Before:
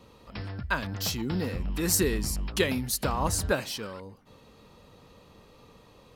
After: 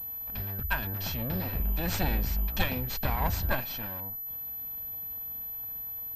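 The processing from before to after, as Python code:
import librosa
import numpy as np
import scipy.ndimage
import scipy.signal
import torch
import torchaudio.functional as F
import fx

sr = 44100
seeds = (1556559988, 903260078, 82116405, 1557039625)

y = fx.lower_of_two(x, sr, delay_ms=1.2)
y = fx.low_shelf(y, sr, hz=60.0, db=10.0)
y = fx.pwm(y, sr, carrier_hz=12000.0)
y = F.gain(torch.from_numpy(y), -2.5).numpy()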